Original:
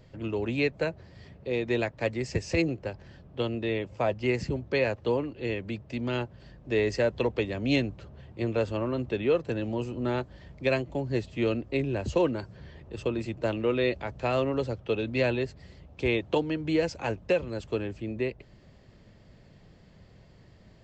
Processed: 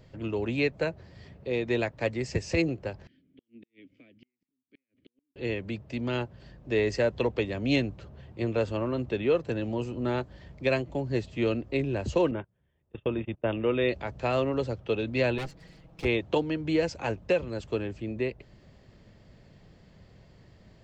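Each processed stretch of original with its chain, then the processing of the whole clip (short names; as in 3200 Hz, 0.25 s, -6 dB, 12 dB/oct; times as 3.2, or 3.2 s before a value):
3.07–5.36 compressor 10:1, threshold -32 dBFS + vowel filter i + flipped gate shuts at -41 dBFS, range -40 dB
12.31–13.89 brick-wall FIR low-pass 3700 Hz + gate -37 dBFS, range -27 dB
15.38–16.05 minimum comb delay 6.2 ms + hard clip -30 dBFS
whole clip: dry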